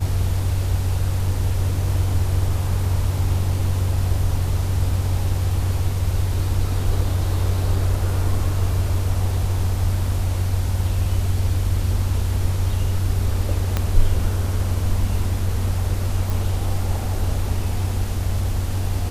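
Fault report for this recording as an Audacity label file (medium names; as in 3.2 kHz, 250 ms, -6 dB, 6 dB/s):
13.770000	13.770000	pop -7 dBFS
16.300000	16.300000	pop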